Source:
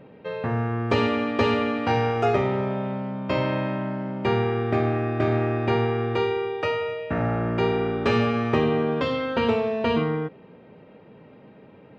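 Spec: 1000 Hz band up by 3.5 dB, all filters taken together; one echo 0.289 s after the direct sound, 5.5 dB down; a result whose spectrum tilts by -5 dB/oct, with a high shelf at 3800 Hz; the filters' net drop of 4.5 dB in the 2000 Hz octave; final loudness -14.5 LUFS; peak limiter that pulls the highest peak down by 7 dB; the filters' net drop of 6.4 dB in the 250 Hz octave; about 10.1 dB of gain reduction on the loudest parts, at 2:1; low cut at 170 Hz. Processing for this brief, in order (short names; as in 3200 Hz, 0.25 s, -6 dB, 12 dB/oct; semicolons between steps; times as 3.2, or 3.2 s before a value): HPF 170 Hz; bell 250 Hz -7 dB; bell 1000 Hz +7 dB; bell 2000 Hz -5.5 dB; high shelf 3800 Hz -8.5 dB; compressor 2:1, threshold -37 dBFS; limiter -26.5 dBFS; echo 0.289 s -5.5 dB; gain +20.5 dB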